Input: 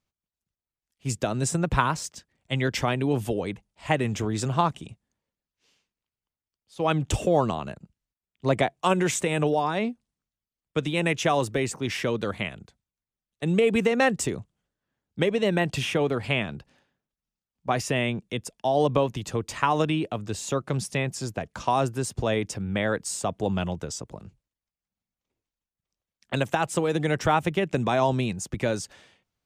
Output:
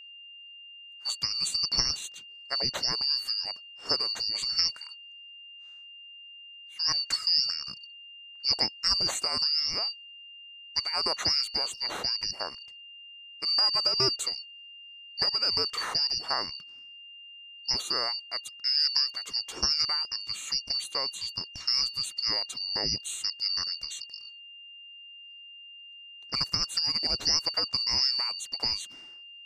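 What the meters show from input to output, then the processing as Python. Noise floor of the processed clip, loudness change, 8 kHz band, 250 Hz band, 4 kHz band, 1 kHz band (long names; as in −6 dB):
−48 dBFS, −0.5 dB, −1.0 dB, −20.0 dB, +12.0 dB, −12.0 dB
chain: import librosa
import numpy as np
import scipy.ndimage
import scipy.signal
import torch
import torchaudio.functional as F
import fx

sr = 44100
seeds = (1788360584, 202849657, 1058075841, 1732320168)

y = fx.band_shuffle(x, sr, order='2341')
y = y + 10.0 ** (-41.0 / 20.0) * np.sin(2.0 * np.pi * 2800.0 * np.arange(len(y)) / sr)
y = F.gain(torch.from_numpy(y), -4.0).numpy()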